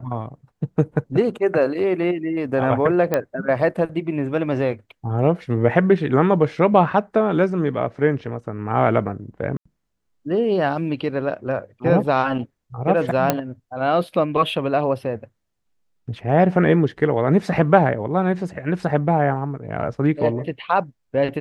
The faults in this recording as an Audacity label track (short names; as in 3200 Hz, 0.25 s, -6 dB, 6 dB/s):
3.140000	3.140000	pop -7 dBFS
9.570000	9.650000	gap 85 ms
13.300000	13.300000	pop -3 dBFS